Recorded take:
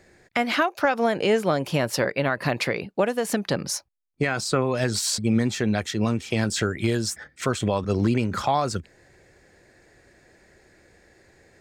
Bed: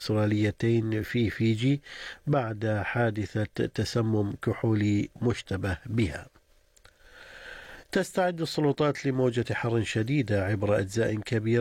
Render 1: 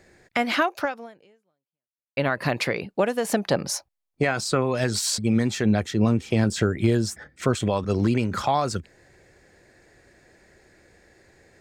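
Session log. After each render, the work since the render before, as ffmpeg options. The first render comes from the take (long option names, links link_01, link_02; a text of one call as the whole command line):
ffmpeg -i in.wav -filter_complex "[0:a]asettb=1/sr,asplit=3[link_01][link_02][link_03];[link_01]atrim=end=3.244[link_04];[link_02]atrim=start=3.24:end=4.31,asetpts=PTS-STARTPTS,afade=type=in:duration=0.004:curve=qsin,afade=type=out:start_time=1.066:duration=0.004:curve=qsin,equalizer=frequency=700:width=1.5:gain=6.5[link_05];[link_03]atrim=start=4.306[link_06];[link_04][link_05]acrossfade=duration=0.004:curve1=hsin:curve2=qsin[link_07];[link_07][link_06]acrossfade=duration=0.004:curve1=qsin:curve2=hsin,asettb=1/sr,asplit=3[link_08][link_09][link_10];[link_08]atrim=end=5.654[link_11];[link_09]atrim=start=5.65:end=7.55,asetpts=PTS-STARTPTS,afade=type=in:duration=0.004:curve=qsin,afade=type=out:start_time=1.896:duration=0.004:curve=qsin,tiltshelf=frequency=910:gain=4[link_12];[link_10]atrim=start=7.546[link_13];[link_11][link_12]acrossfade=duration=0.004:curve1=hsin:curve2=qsin[link_14];[link_14][link_13]acrossfade=duration=0.004:curve1=qsin:curve2=hsin,asplit=2[link_15][link_16];[link_15]atrim=end=2.17,asetpts=PTS-STARTPTS,afade=type=out:start_time=0.79:duration=1.38:curve=exp[link_17];[link_16]atrim=start=2.17,asetpts=PTS-STARTPTS,afade=type=in:duration=0.004:curve=hsin[link_18];[link_17][link_18]concat=n=2:v=0:a=1" out.wav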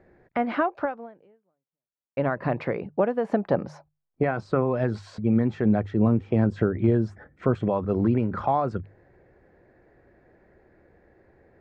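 ffmpeg -i in.wav -af "lowpass=1200,bandreject=frequency=50:width_type=h:width=6,bandreject=frequency=100:width_type=h:width=6,bandreject=frequency=150:width_type=h:width=6" out.wav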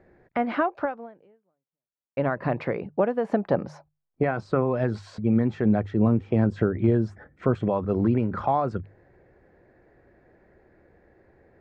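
ffmpeg -i in.wav -af anull out.wav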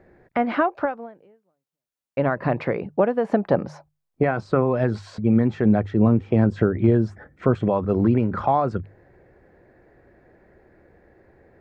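ffmpeg -i in.wav -af "volume=3.5dB" out.wav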